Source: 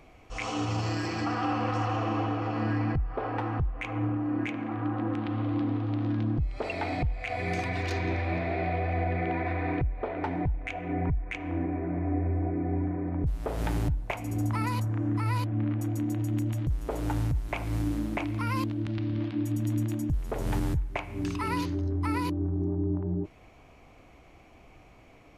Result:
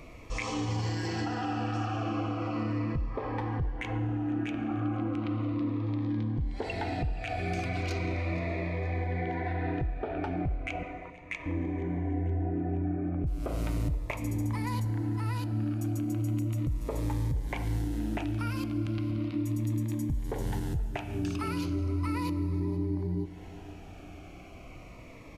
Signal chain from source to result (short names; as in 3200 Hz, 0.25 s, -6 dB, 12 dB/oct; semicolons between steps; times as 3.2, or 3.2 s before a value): compressor 3:1, threshold -38 dBFS, peak gain reduction 10.5 dB; 10.83–11.46 HPF 670 Hz 12 dB/oct; feedback echo 0.473 s, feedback 58%, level -20.5 dB; plate-style reverb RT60 3.8 s, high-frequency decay 0.95×, DRR 12.5 dB; cascading phaser falling 0.36 Hz; gain +7 dB